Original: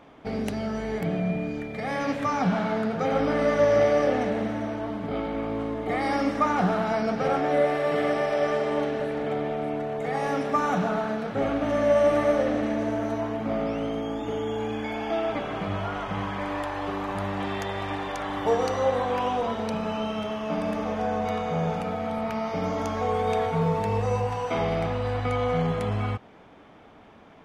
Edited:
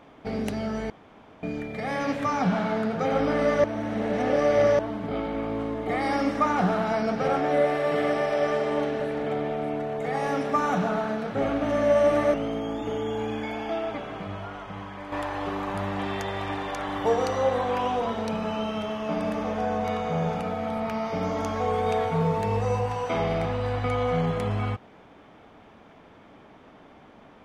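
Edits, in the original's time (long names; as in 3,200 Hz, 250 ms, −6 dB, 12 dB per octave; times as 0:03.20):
0:00.90–0:01.43: fill with room tone
0:03.64–0:04.79: reverse
0:12.34–0:13.75: remove
0:14.77–0:16.53: fade out quadratic, to −8 dB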